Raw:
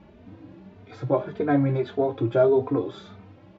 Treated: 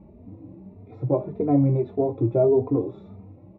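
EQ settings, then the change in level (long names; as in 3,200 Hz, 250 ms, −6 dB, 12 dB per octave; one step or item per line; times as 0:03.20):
moving average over 28 samples
low-shelf EQ 330 Hz +4.5 dB
0.0 dB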